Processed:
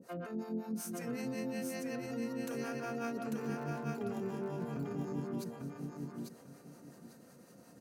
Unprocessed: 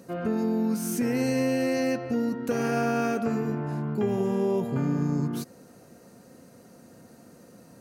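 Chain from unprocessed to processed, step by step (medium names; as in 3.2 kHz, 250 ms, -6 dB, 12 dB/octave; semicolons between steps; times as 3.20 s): bass shelf 94 Hz -10 dB; peak limiter -25.5 dBFS, peak gain reduction 9.5 dB; 3.39–4.45 s: crackle 86 per s -42 dBFS; harmonic tremolo 5.4 Hz, depth 100%, crossover 510 Hz; feedback delay 846 ms, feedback 23%, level -3.5 dB; trim -2.5 dB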